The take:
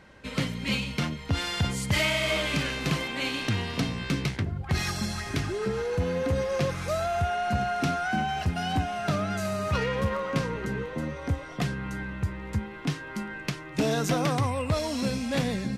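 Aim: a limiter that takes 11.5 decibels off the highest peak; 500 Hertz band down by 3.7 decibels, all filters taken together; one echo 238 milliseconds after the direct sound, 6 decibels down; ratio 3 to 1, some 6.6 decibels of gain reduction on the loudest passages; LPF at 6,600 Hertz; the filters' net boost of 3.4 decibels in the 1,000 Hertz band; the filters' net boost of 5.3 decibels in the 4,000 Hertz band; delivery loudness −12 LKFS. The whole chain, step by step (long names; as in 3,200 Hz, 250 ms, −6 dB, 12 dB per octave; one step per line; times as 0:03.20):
low-pass filter 6,600 Hz
parametric band 500 Hz −8 dB
parametric band 1,000 Hz +8 dB
parametric band 4,000 Hz +7 dB
downward compressor 3 to 1, threshold −30 dBFS
brickwall limiter −26.5 dBFS
single-tap delay 238 ms −6 dB
level +22 dB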